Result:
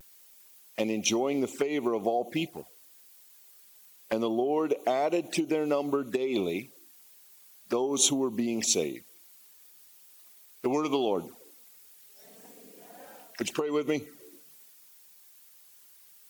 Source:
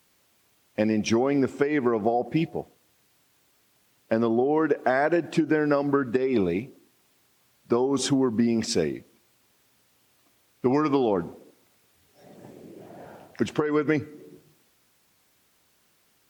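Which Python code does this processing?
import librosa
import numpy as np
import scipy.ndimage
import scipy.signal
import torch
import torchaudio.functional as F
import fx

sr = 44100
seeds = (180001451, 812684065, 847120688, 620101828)

y = fx.riaa(x, sr, side='recording')
y = fx.vibrato(y, sr, rate_hz=0.41, depth_cents=19.0)
y = fx.env_flanger(y, sr, rest_ms=6.1, full_db=-25.5)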